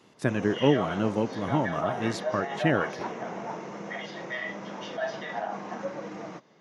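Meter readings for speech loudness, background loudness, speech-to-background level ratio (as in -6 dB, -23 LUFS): -28.0 LUFS, -35.0 LUFS, 7.0 dB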